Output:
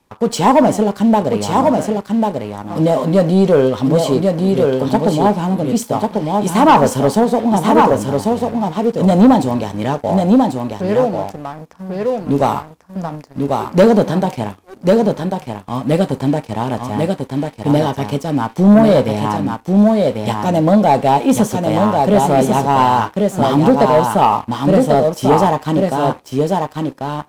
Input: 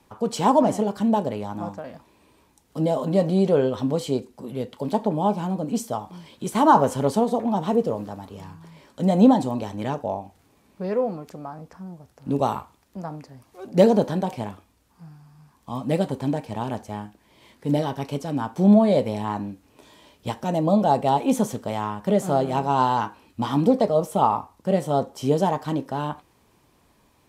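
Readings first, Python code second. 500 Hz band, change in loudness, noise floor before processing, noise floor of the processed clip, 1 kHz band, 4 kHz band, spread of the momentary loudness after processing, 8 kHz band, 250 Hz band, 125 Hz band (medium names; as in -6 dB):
+9.5 dB, +8.5 dB, -61 dBFS, -42 dBFS, +9.0 dB, +10.0 dB, 10 LU, +10.5 dB, +9.5 dB, +9.5 dB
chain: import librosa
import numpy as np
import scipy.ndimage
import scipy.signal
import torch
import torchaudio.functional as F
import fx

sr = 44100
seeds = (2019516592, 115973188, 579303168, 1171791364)

y = x + 10.0 ** (-4.0 / 20.0) * np.pad(x, (int(1093 * sr / 1000.0), 0))[:len(x)]
y = fx.leveller(y, sr, passes=2)
y = y * 10.0 ** (1.5 / 20.0)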